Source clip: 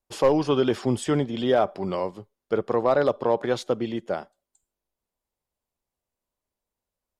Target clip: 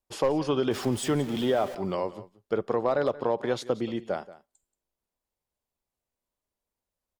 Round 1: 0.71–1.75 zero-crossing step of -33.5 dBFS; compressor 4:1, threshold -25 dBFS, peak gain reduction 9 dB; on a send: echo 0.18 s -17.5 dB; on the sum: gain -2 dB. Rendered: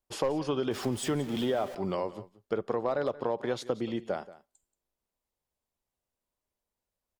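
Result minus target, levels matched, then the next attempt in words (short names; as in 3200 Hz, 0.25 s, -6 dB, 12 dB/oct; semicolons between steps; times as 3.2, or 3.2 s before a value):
compressor: peak gain reduction +4.5 dB
0.71–1.75 zero-crossing step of -33.5 dBFS; compressor 4:1, threshold -19 dBFS, peak gain reduction 4.5 dB; on a send: echo 0.18 s -17.5 dB; on the sum: gain -2 dB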